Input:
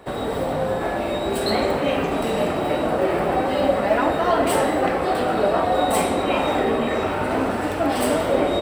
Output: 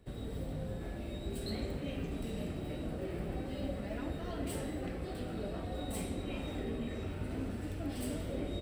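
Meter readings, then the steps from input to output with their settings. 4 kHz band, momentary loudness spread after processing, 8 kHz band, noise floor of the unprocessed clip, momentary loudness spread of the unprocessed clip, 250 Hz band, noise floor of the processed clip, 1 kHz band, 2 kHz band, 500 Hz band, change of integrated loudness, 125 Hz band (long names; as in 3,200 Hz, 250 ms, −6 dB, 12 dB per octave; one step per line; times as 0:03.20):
−18.5 dB, 2 LU, −16.5 dB, −25 dBFS, 4 LU, −14.5 dB, −42 dBFS, −28.0 dB, −22.5 dB, −22.0 dB, −18.5 dB, −7.5 dB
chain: guitar amp tone stack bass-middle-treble 10-0-1
level +4 dB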